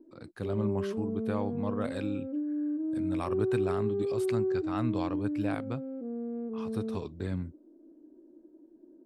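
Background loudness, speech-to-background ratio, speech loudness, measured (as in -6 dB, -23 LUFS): -33.5 LUFS, -2.5 dB, -36.0 LUFS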